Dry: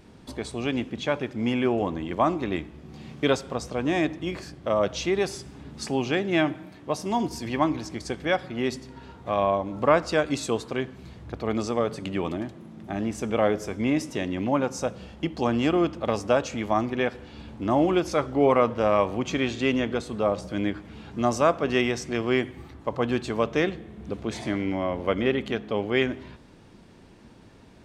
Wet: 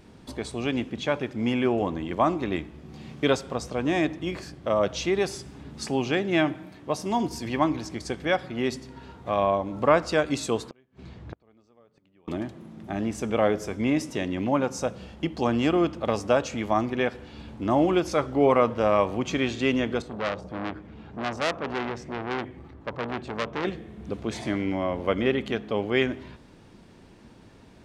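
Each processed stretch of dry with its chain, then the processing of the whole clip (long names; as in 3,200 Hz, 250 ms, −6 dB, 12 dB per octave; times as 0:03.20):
0:10.69–0:12.28: high-frequency loss of the air 77 metres + gate with flip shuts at −27 dBFS, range −33 dB
0:20.02–0:23.65: low-pass filter 1,600 Hz 6 dB per octave + saturating transformer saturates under 2,900 Hz
whole clip: no processing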